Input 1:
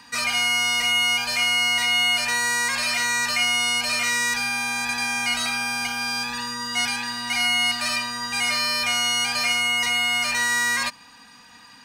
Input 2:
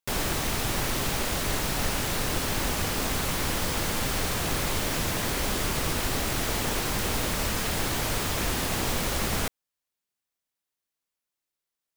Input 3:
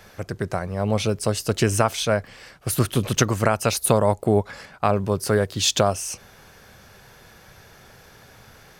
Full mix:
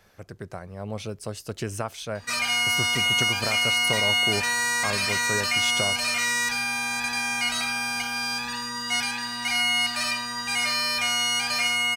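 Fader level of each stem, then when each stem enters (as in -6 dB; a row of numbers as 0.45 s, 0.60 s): -2.0 dB, mute, -11.0 dB; 2.15 s, mute, 0.00 s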